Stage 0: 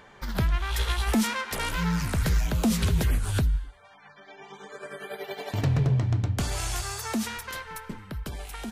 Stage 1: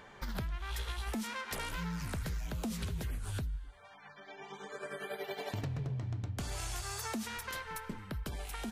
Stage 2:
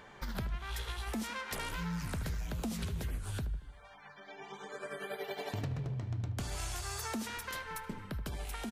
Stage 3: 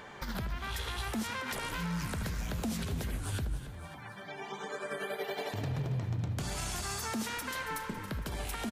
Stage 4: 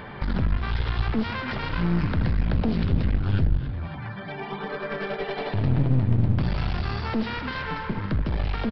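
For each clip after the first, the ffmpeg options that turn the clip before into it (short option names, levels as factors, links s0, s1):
-af "acompressor=threshold=0.0224:ratio=6,volume=0.75"
-filter_complex "[0:a]asplit=2[s0][s1];[s1]adelay=76,lowpass=f=1500:p=1,volume=0.282,asplit=2[s2][s3];[s3]adelay=76,lowpass=f=1500:p=1,volume=0.5,asplit=2[s4][s5];[s5]adelay=76,lowpass=f=1500:p=1,volume=0.5,asplit=2[s6][s7];[s7]adelay=76,lowpass=f=1500:p=1,volume=0.5,asplit=2[s8][s9];[s9]adelay=76,lowpass=f=1500:p=1,volume=0.5[s10];[s0][s2][s4][s6][s8][s10]amix=inputs=6:normalize=0"
-filter_complex "[0:a]lowshelf=f=60:g=-8,alimiter=level_in=2.82:limit=0.0631:level=0:latency=1:release=91,volume=0.355,asplit=7[s0][s1][s2][s3][s4][s5][s6];[s1]adelay=277,afreqshift=31,volume=0.224[s7];[s2]adelay=554,afreqshift=62,volume=0.126[s8];[s3]adelay=831,afreqshift=93,volume=0.07[s9];[s4]adelay=1108,afreqshift=124,volume=0.0394[s10];[s5]adelay=1385,afreqshift=155,volume=0.0221[s11];[s6]adelay=1662,afreqshift=186,volume=0.0123[s12];[s0][s7][s8][s9][s10][s11][s12]amix=inputs=7:normalize=0,volume=2"
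-af "bass=f=250:g=9,treble=f=4000:g=-9,aresample=11025,aeval=exprs='clip(val(0),-1,0.0141)':c=same,aresample=44100,volume=2.51"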